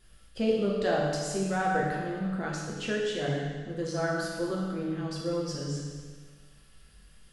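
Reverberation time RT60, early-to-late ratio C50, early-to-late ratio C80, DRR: 1.6 s, 0.0 dB, 1.5 dB, -4.5 dB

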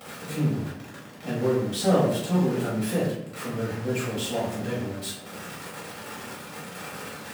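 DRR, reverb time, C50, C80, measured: -9.0 dB, 0.75 s, 3.0 dB, 6.0 dB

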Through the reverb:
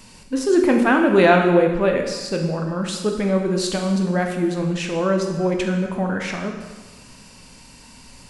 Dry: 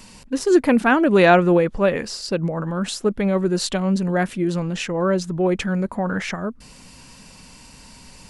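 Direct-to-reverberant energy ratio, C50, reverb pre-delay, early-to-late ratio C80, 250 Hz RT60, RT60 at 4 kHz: 2.5 dB, 5.0 dB, 8 ms, 7.0 dB, 1.3 s, 1.2 s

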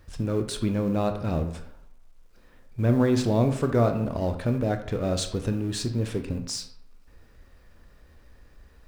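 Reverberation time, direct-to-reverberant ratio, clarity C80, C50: 0.70 s, 6.5 dB, 12.5 dB, 9.5 dB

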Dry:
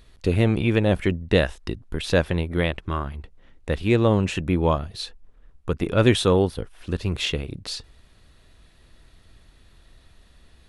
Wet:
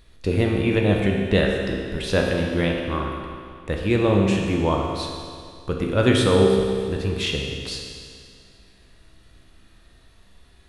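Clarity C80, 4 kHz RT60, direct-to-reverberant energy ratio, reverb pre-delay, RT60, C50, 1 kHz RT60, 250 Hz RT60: 3.0 dB, 2.1 s, 0.0 dB, 15 ms, 2.2 s, 2.0 dB, 2.2 s, 2.2 s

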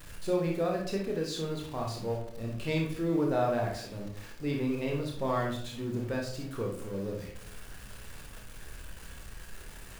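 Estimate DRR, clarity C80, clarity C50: -0.5 dB, 9.5 dB, 3.5 dB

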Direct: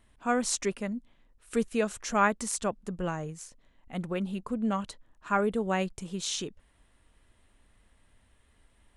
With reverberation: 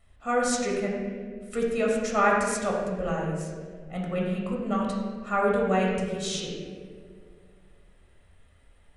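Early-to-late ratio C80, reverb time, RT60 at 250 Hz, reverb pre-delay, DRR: 2.5 dB, 2.1 s, 2.5 s, 16 ms, -3.0 dB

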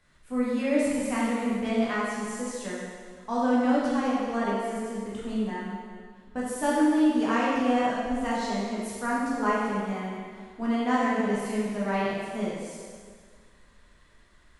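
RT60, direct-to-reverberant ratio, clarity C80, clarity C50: 1.8 s, -7.5 dB, 0.0 dB, -2.0 dB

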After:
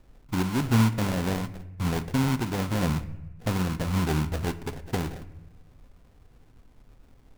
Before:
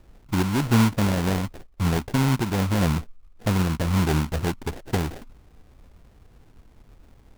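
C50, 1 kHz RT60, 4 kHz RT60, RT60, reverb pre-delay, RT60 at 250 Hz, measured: 16.0 dB, 0.90 s, 0.70 s, 1.0 s, 4 ms, 1.2 s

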